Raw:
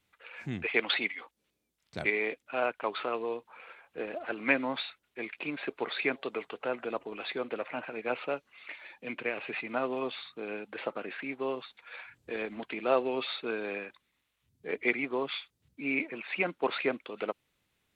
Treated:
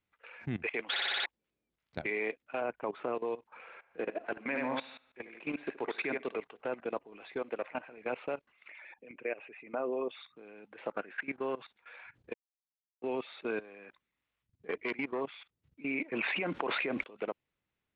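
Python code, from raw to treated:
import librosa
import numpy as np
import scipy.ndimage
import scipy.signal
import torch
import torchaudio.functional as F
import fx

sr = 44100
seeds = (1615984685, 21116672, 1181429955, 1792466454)

y = fx.tilt_eq(x, sr, slope=-2.5, at=(2.61, 3.15))
y = fx.echo_tape(y, sr, ms=72, feedback_pct=38, wet_db=-5, lp_hz=4100.0, drive_db=11.0, wow_cents=9, at=(3.65, 6.37))
y = fx.low_shelf(y, sr, hz=190.0, db=-6.5, at=(7.39, 7.89))
y = fx.envelope_sharpen(y, sr, power=1.5, at=(8.69, 10.35), fade=0.02)
y = fx.peak_eq(y, sr, hz=1500.0, db=9.0, octaves=0.43, at=(10.91, 11.6))
y = fx.transformer_sat(y, sr, knee_hz=1900.0, at=(13.61, 15.21))
y = fx.env_flatten(y, sr, amount_pct=70, at=(16.12, 17.02), fade=0.02)
y = fx.edit(y, sr, fx.stutter_over(start_s=0.9, slice_s=0.06, count=6),
    fx.silence(start_s=12.34, length_s=0.68), tone=tone)
y = scipy.signal.sosfilt(scipy.signal.butter(2, 2700.0, 'lowpass', fs=sr, output='sos'), y)
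y = fx.dynamic_eq(y, sr, hz=1300.0, q=7.3, threshold_db=-55.0, ratio=4.0, max_db=-4)
y = fx.level_steps(y, sr, step_db=18)
y = y * 10.0 ** (2.5 / 20.0)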